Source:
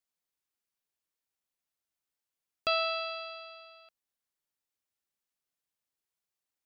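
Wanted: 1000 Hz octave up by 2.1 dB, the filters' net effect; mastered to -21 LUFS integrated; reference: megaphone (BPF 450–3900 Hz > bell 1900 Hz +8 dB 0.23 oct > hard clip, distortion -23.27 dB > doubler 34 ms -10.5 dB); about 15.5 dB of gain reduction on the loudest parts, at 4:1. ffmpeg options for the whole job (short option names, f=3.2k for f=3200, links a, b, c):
-filter_complex "[0:a]equalizer=f=1k:t=o:g=3,acompressor=threshold=-43dB:ratio=4,highpass=450,lowpass=3.9k,equalizer=f=1.9k:t=o:w=0.23:g=8,asoftclip=type=hard:threshold=-31dB,asplit=2[a][b];[b]adelay=34,volume=-10.5dB[c];[a][c]amix=inputs=2:normalize=0,volume=25dB"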